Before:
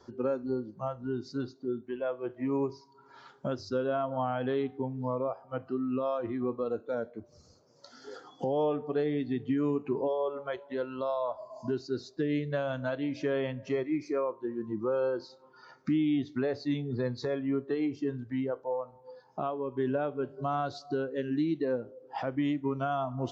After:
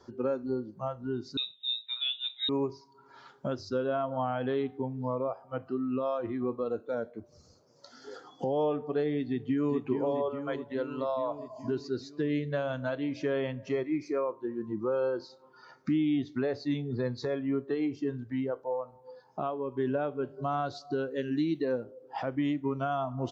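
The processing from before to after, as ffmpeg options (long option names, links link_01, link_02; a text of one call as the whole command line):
ffmpeg -i in.wav -filter_complex "[0:a]asettb=1/sr,asplit=3[link_01][link_02][link_03];[link_01]atrim=end=1.374[link_04];[link_02]atrim=start=1.37:end=2.49,asetpts=PTS-STARTPTS,afade=type=in:duration=0.004:curve=qsin,afade=type=out:start_time=1.116:duration=0.004:curve=qsin,lowpass=frequency=3400:width_type=q:width=0.5098,lowpass=frequency=3400:width_type=q:width=0.6013,lowpass=frequency=3400:width_type=q:width=0.9,lowpass=frequency=3400:width_type=q:width=2.563,afreqshift=-4000[link_05];[link_03]atrim=start=2.486[link_06];[link_04][link_05]acrossfade=duration=0.004:curve1=hsin:curve2=qsin[link_07];[link_07][link_06]acrossfade=duration=0.004:curve1=qsin:curve2=hsin,asplit=2[link_08][link_09];[link_09]afade=type=in:start_time=9.27:duration=0.01,afade=type=out:start_time=9.79:duration=0.01,aecho=0:1:420|840|1260|1680|2100|2520|2940|3360|3780|4200|4620:0.446684|0.312679|0.218875|0.153212|0.107249|0.0750741|0.0525519|0.0367863|0.0257504|0.0180253|0.0126177[link_10];[link_08][link_10]amix=inputs=2:normalize=0,asettb=1/sr,asplit=3[link_11][link_12][link_13];[link_11]atrim=end=20.984[link_14];[link_12]atrim=start=20.98:end=21.84,asetpts=PTS-STARTPTS,afade=type=in:duration=0.004:curve=qsin,afade=type=out:start_time=0.856:duration=0.004:curve=qsin,highshelf=frequency=3600:gain=8[link_15];[link_13]atrim=start=21.836[link_16];[link_14][link_15]acrossfade=duration=0.004:curve1=hsin:curve2=qsin[link_17];[link_17][link_16]acrossfade=duration=0.004:curve1=qsin:curve2=hsin" out.wav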